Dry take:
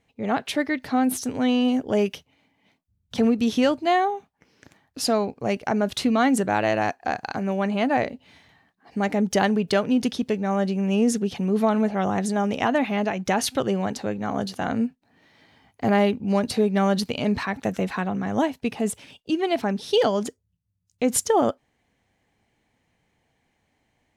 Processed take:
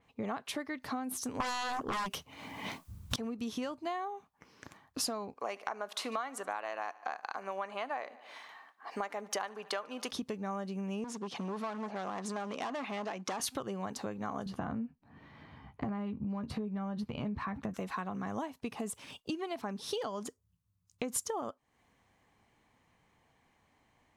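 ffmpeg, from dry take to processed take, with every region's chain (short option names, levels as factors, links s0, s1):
-filter_complex "[0:a]asettb=1/sr,asplit=3[s0][s1][s2];[s0]atrim=end=1.404[s3];[s1]atrim=start=1.4:end=3.16,asetpts=PTS-STARTPTS,afade=t=in:d=0.004:c=qsin,afade=t=out:st=1.756:d=0.004:c=qsin,acontrast=49,aeval=exprs='0.473*sin(PI/2*5.01*val(0)/0.473)':c=same[s4];[s2]atrim=start=3.156[s5];[s3][s4]acrossfade=d=0.004:c1=hsin:c2=qsin[s6];[s6][s5]acrossfade=d=0.004:c1=qsin:c2=hsin,asettb=1/sr,asplit=3[s7][s8][s9];[s7]atrim=end=5.374[s10];[s8]atrim=start=5.37:end=10.11,asetpts=PTS-STARTPTS,afade=t=in:d=0.004:c=qsin,afade=t=out:st=4.736:d=0.004:c=qsin,highpass=490,equalizer=f=1200:w=0.31:g=6,aecho=1:1:73|146|219|292:0.0708|0.0418|0.0246|0.0145,atrim=end_sample=209034[s11];[s9]atrim=start=10.106[s12];[s10][s11]acrossfade=d=0.004:c1=hsin:c2=qsin[s13];[s13][s12]acrossfade=d=0.004:c1=qsin:c2=hsin,asettb=1/sr,asplit=3[s14][s15][s16];[s14]atrim=end=11.044[s17];[s15]atrim=start=11.04:end=13.4,asetpts=PTS-STARTPTS,afade=t=in:d=0.004:c=qsin,afade=t=out:st=2.356:d=0.004:c=qsin,asoftclip=type=hard:threshold=0.075,highpass=240,lowpass=7000[s18];[s16]atrim=start=13.396[s19];[s17][s18]acrossfade=d=0.004:c1=hsin:c2=qsin[s20];[s20][s19]acrossfade=d=0.004:c1=qsin:c2=hsin,asettb=1/sr,asplit=3[s21][s22][s23];[s21]atrim=end=14.464[s24];[s22]atrim=start=14.46:end=17.74,asetpts=PTS-STARTPTS,afade=t=in:d=0.004:c=qsin,afade=t=out:st=3.276:d=0.004:c=qsin,bass=f=250:g=12,treble=f=4000:g=-14,acompressor=threshold=0.1:ratio=3:attack=3.2:release=140:knee=1:detection=peak,asplit=2[s25][s26];[s26]adelay=14,volume=0.355[s27];[s25][s27]amix=inputs=2:normalize=0,atrim=end_sample=144648[s28];[s23]atrim=start=17.736[s29];[s24][s28]acrossfade=d=0.004:c1=hsin:c2=qsin[s30];[s30][s29]acrossfade=d=0.004:c1=qsin:c2=hsin,equalizer=f=1100:w=2.7:g=10,acompressor=threshold=0.0224:ratio=10,adynamicequalizer=threshold=0.00178:dfrequency=5200:dqfactor=0.7:tfrequency=5200:tqfactor=0.7:attack=5:release=100:ratio=0.375:range=2.5:mode=boostabove:tftype=highshelf,volume=0.841"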